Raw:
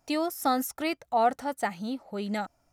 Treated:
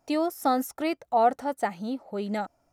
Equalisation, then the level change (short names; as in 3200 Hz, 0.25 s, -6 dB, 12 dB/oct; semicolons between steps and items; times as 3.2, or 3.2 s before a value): bell 470 Hz +7 dB 2.7 oct; -3.5 dB